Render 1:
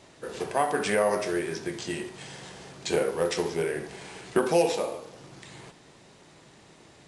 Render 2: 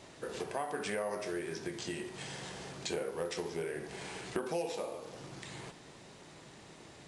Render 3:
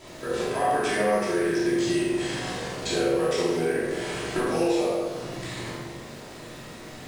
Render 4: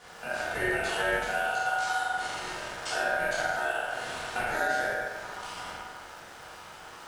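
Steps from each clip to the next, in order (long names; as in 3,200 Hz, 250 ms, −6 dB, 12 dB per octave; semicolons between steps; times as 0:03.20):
downward compressor 2.5 to 1, threshold −39 dBFS, peak gain reduction 14.5 dB
surface crackle 250 per second −46 dBFS; on a send: flutter between parallel walls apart 7.5 metres, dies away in 0.49 s; on the sum: rectangular room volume 400 cubic metres, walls mixed, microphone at 2.9 metres; level +2.5 dB
ring modulation 1,100 Hz; level −2 dB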